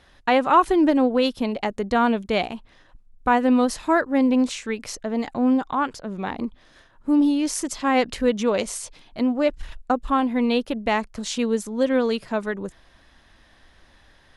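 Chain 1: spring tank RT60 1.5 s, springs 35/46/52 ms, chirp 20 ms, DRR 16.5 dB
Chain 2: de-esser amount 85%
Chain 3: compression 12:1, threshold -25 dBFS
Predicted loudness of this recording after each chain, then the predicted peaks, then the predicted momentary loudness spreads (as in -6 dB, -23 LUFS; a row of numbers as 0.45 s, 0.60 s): -22.5 LUFS, -23.0 LUFS, -31.0 LUFS; -5.5 dBFS, -7.0 dBFS, -12.5 dBFS; 12 LU, 12 LU, 5 LU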